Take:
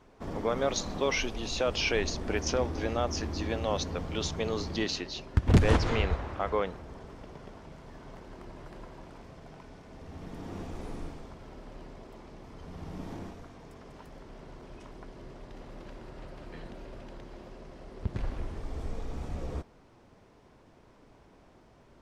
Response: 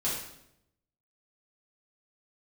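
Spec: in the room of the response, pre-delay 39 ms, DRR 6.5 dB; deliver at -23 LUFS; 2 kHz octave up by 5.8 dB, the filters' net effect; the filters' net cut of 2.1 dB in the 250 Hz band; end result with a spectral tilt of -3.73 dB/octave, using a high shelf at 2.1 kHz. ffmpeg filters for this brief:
-filter_complex "[0:a]equalizer=f=250:t=o:g=-3,equalizer=f=2000:t=o:g=3.5,highshelf=f=2100:g=6,asplit=2[s0][s1];[1:a]atrim=start_sample=2205,adelay=39[s2];[s1][s2]afir=irnorm=-1:irlink=0,volume=0.224[s3];[s0][s3]amix=inputs=2:normalize=0,volume=1.88"

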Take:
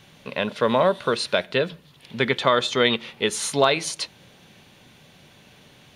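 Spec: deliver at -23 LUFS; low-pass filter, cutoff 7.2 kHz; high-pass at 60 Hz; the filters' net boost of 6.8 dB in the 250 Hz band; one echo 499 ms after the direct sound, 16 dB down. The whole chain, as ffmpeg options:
-af "highpass=60,lowpass=7200,equalizer=f=250:t=o:g=8,aecho=1:1:499:0.158,volume=0.794"

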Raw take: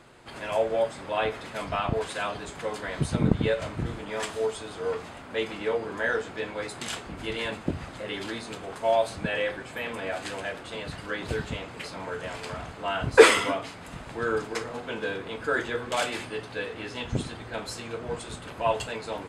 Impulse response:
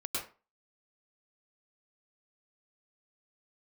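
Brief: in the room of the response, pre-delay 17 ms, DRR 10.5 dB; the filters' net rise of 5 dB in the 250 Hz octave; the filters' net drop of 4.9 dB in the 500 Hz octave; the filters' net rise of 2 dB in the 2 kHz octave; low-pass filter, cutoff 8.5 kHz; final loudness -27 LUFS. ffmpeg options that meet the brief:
-filter_complex "[0:a]lowpass=8500,equalizer=f=250:t=o:g=9,equalizer=f=500:t=o:g=-8.5,equalizer=f=2000:t=o:g=3,asplit=2[s0][s1];[1:a]atrim=start_sample=2205,adelay=17[s2];[s1][s2]afir=irnorm=-1:irlink=0,volume=0.2[s3];[s0][s3]amix=inputs=2:normalize=0,volume=1.26"

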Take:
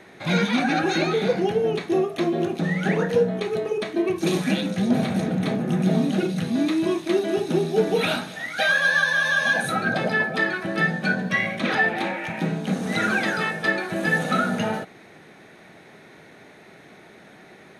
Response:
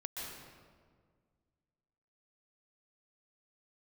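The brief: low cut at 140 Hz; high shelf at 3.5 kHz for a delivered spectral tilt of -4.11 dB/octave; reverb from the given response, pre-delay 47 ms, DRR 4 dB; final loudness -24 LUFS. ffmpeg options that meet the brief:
-filter_complex "[0:a]highpass=140,highshelf=f=3500:g=-3.5,asplit=2[s0][s1];[1:a]atrim=start_sample=2205,adelay=47[s2];[s1][s2]afir=irnorm=-1:irlink=0,volume=0.596[s3];[s0][s3]amix=inputs=2:normalize=0,volume=0.794"

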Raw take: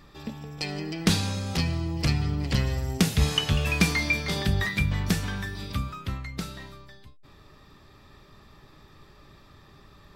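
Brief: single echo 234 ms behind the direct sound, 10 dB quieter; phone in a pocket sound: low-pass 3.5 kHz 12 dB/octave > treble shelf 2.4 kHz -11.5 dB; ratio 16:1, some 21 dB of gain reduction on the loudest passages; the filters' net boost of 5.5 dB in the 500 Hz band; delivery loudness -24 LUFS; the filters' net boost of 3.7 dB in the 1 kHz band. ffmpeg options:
-af "equalizer=f=500:t=o:g=6.5,equalizer=f=1000:t=o:g=5,acompressor=threshold=0.0141:ratio=16,lowpass=3500,highshelf=f=2400:g=-11.5,aecho=1:1:234:0.316,volume=10"

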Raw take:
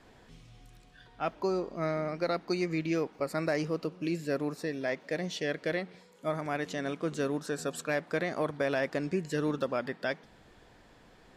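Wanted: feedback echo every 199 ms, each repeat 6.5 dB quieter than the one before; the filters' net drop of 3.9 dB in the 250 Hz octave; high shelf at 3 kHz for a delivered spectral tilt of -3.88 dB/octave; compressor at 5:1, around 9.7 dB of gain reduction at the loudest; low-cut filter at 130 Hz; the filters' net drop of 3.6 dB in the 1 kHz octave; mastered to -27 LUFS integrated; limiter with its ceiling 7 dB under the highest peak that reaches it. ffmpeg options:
-af "highpass=130,equalizer=f=250:t=o:g=-5,equalizer=f=1000:t=o:g=-6,highshelf=f=3000:g=6,acompressor=threshold=0.0112:ratio=5,alimiter=level_in=2.51:limit=0.0631:level=0:latency=1,volume=0.398,aecho=1:1:199|398|597|796|995|1194:0.473|0.222|0.105|0.0491|0.0231|0.0109,volume=6.68"

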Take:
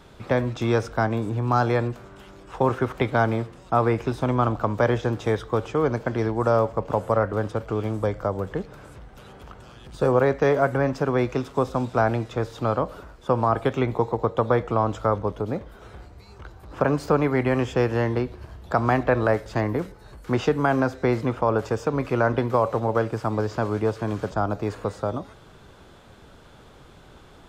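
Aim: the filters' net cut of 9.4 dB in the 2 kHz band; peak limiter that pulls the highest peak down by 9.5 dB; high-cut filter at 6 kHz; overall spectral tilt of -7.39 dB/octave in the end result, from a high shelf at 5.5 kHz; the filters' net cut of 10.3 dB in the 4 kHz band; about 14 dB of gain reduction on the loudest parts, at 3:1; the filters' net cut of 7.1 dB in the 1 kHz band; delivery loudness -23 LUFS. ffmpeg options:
-af "lowpass=6000,equalizer=f=1000:t=o:g=-7.5,equalizer=f=2000:t=o:g=-7.5,equalizer=f=4000:t=o:g=-7,highshelf=f=5500:g=-6.5,acompressor=threshold=0.0141:ratio=3,volume=8.41,alimiter=limit=0.266:level=0:latency=1"

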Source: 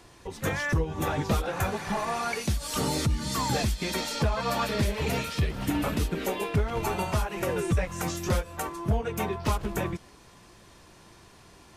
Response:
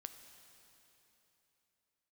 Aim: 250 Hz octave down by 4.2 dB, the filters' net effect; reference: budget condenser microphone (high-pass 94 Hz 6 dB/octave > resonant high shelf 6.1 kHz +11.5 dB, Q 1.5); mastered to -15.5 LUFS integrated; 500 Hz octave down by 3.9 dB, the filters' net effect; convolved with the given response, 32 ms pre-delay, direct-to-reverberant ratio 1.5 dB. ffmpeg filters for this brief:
-filter_complex "[0:a]equalizer=f=250:t=o:g=-4,equalizer=f=500:t=o:g=-3.5,asplit=2[s0][s1];[1:a]atrim=start_sample=2205,adelay=32[s2];[s1][s2]afir=irnorm=-1:irlink=0,volume=1.5[s3];[s0][s3]amix=inputs=2:normalize=0,highpass=f=94:p=1,highshelf=f=6100:t=q:w=1.5:g=11.5,volume=3.16"

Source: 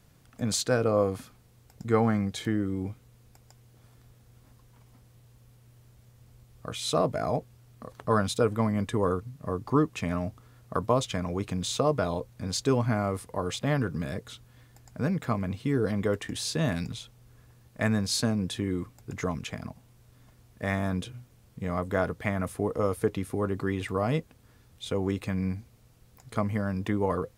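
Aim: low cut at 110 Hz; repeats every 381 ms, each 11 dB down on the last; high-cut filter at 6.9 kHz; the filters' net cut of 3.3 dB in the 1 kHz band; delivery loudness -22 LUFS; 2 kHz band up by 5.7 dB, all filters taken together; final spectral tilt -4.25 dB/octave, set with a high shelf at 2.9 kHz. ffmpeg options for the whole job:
-af "highpass=110,lowpass=6900,equalizer=f=1000:t=o:g=-7.5,equalizer=f=2000:t=o:g=7,highshelf=f=2900:g=7.5,aecho=1:1:381|762|1143:0.282|0.0789|0.0221,volume=2.24"

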